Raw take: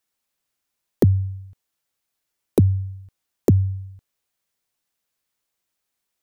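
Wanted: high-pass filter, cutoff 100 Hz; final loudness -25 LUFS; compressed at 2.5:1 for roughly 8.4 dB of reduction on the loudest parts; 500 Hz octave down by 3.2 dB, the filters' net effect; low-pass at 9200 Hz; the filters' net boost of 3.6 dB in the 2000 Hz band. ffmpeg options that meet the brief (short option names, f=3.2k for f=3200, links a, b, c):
-af "highpass=100,lowpass=9.2k,equalizer=f=500:t=o:g=-4.5,equalizer=f=2k:t=o:g=4.5,acompressor=threshold=-26dB:ratio=2.5,volume=6.5dB"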